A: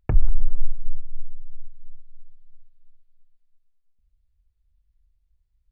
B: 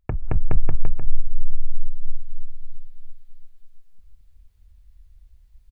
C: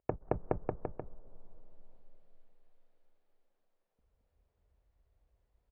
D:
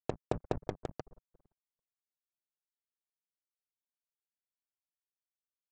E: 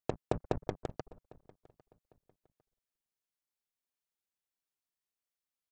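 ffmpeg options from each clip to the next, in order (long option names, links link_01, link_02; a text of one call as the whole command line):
ffmpeg -i in.wav -filter_complex "[0:a]acompressor=threshold=-21dB:ratio=10,asplit=2[link_01][link_02];[link_02]aecho=0:1:220|418|596.2|756.6|900.9:0.631|0.398|0.251|0.158|0.1[link_03];[link_01][link_03]amix=inputs=2:normalize=0,dynaudnorm=framelen=200:gausssize=3:maxgain=14.5dB,volume=-1.5dB" out.wav
ffmpeg -i in.wav -af "bandpass=frequency=550:width_type=q:width=1.5:csg=0,volume=3.5dB" out.wav
ffmpeg -i in.wav -af "aresample=16000,acrusher=bits=5:mix=0:aa=0.5,aresample=44100,equalizer=frequency=150:width=2.3:gain=2.5,volume=-1dB" out.wav
ffmpeg -i in.wav -filter_complex "[0:a]asplit=2[link_01][link_02];[link_02]adelay=802,lowpass=frequency=4200:poles=1,volume=-24dB,asplit=2[link_03][link_04];[link_04]adelay=802,lowpass=frequency=4200:poles=1,volume=0.31[link_05];[link_01][link_03][link_05]amix=inputs=3:normalize=0,volume=1dB" out.wav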